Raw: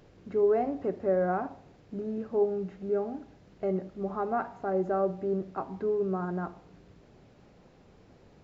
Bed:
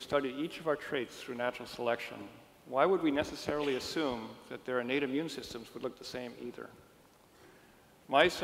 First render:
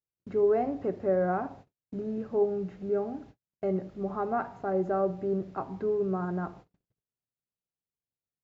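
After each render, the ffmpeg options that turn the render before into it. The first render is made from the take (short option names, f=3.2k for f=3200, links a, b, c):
-af "agate=range=-48dB:threshold=-49dB:ratio=16:detection=peak,equalizer=f=120:t=o:w=0.62:g=6"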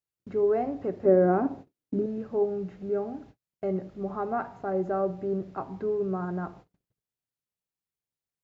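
-filter_complex "[0:a]asettb=1/sr,asplit=3[a][b][c];[a]atrim=end=1.054[d];[b]atrim=start=1.05:end=2.06,asetpts=PTS-STARTPTS,afade=t=in:d=0.004:c=qsin,afade=t=out:st=1.006:d=0.004:c=qsin,equalizer=f=300:w=1.1:g=13[e];[c]atrim=start=2.056[f];[d][e]acrossfade=d=0.004:c1=hsin:c2=qsin[g];[g][f]acrossfade=d=0.004:c1=qsin:c2=hsin"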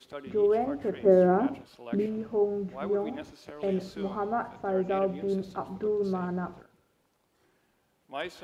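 -filter_complex "[1:a]volume=-10dB[a];[0:a][a]amix=inputs=2:normalize=0"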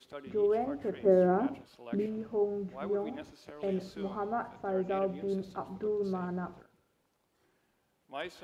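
-af "volume=-4dB"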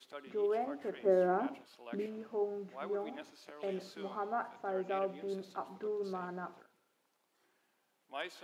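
-af "highpass=320,equalizer=f=460:t=o:w=1.3:g=-4"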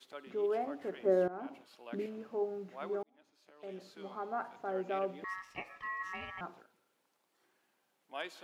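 -filter_complex "[0:a]asettb=1/sr,asplit=3[a][b][c];[a]atrim=end=5.244[d];[b]atrim=start=5.24:end=6.41,asetpts=PTS-STARTPTS,afade=t=in:d=0.004:c=qsin,afade=t=out:st=1.166:d=0.004:c=qsin,aeval=exprs='val(0)*sin(2*PI*1500*n/s)':c=same[e];[c]atrim=start=6.406[f];[d][e]acrossfade=d=0.004:c1=hsin:c2=qsin[g];[g][f]acrossfade=d=0.004:c1=qsin:c2=hsin,asplit=3[h][i][j];[h]atrim=end=1.28,asetpts=PTS-STARTPTS,afade=t=out:st=1.276:d=0.004:c=hsin:silence=0.133352[k];[i]atrim=start=1.28:end=3.03,asetpts=PTS-STARTPTS,afade=t=in:d=0.44:silence=0.133352,afade=t=out:st=1.746:d=0.004:c=hsin[l];[j]atrim=start=3.03,asetpts=PTS-STARTPTS,afade=t=in:d=1.55[m];[k][l][m]concat=n=3:v=0:a=1"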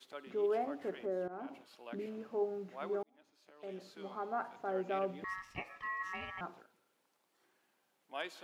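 -filter_complex "[0:a]asettb=1/sr,asplit=3[a][b][c];[a]atrim=end=0.964[d];[b]atrim=start=0.96:end=2.07,asetpts=PTS-STARTPTS,afade=t=in:d=0.004:c=qsin,afade=t=out:st=1.106:d=0.004:c=qsin,acompressor=threshold=-40dB:ratio=2:attack=3.2:release=140:knee=1:detection=peak[e];[c]atrim=start=2.066[f];[d][e]acrossfade=d=0.004:c1=hsin:c2=qsin[g];[g][f]acrossfade=d=0.004:c1=qsin:c2=hsin,asettb=1/sr,asplit=3[h][i][j];[h]atrim=end=4.754[k];[i]atrim=start=4.75:end=5.59,asetpts=PTS-STARTPTS,afade=t=in:d=0.004:c=qsin,afade=t=out:st=0.836:d=0.004:c=qsin,asubboost=boost=9.5:cutoff=240[l];[j]atrim=start=5.586[m];[k][l]acrossfade=d=0.004:c1=hsin:c2=qsin[n];[n][m]acrossfade=d=0.004:c1=qsin:c2=hsin"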